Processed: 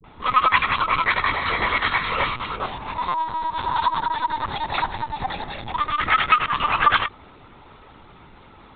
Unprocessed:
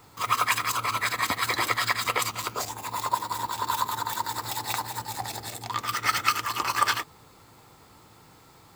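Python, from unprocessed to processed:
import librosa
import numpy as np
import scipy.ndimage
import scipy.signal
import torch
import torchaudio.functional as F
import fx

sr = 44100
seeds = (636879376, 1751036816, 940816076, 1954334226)

y = fx.spec_steps(x, sr, hold_ms=50, at=(1.21, 3.71))
y = fx.dispersion(y, sr, late='highs', ms=50.0, hz=340.0)
y = fx.lpc_vocoder(y, sr, seeds[0], excitation='pitch_kept', order=16)
y = F.gain(torch.from_numpy(y), 7.5).numpy()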